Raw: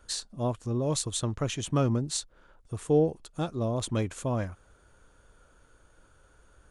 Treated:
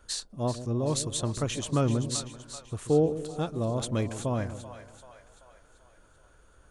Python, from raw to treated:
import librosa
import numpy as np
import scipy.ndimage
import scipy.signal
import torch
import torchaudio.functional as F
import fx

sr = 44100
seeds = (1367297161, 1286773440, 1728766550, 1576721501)

y = fx.echo_split(x, sr, split_hz=590.0, low_ms=137, high_ms=385, feedback_pct=52, wet_db=-11)